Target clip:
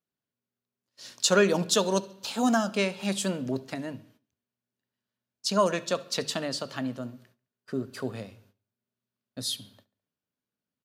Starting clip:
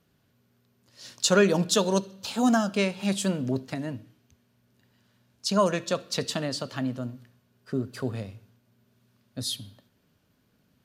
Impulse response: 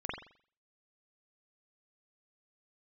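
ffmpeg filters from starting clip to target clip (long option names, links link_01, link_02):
-filter_complex "[0:a]bandreject=frequency=50:width_type=h:width=6,bandreject=frequency=100:width_type=h:width=6,bandreject=frequency=150:width_type=h:width=6,agate=range=-21dB:threshold=-55dB:ratio=16:detection=peak,lowshelf=frequency=130:gain=-11.5,asplit=2[link_01][link_02];[link_02]adelay=70,lowpass=frequency=4300:poles=1,volume=-23dB,asplit=2[link_03][link_04];[link_04]adelay=70,lowpass=frequency=4300:poles=1,volume=0.53,asplit=2[link_05][link_06];[link_06]adelay=70,lowpass=frequency=4300:poles=1,volume=0.53,asplit=2[link_07][link_08];[link_08]adelay=70,lowpass=frequency=4300:poles=1,volume=0.53[link_09];[link_03][link_05][link_07][link_09]amix=inputs=4:normalize=0[link_10];[link_01][link_10]amix=inputs=2:normalize=0"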